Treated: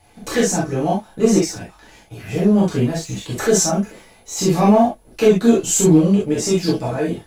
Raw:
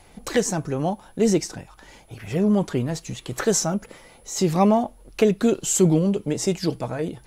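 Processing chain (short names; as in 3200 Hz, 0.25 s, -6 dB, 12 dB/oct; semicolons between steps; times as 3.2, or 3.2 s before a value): sample leveller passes 1; non-linear reverb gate 90 ms flat, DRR -7 dB; gain -6 dB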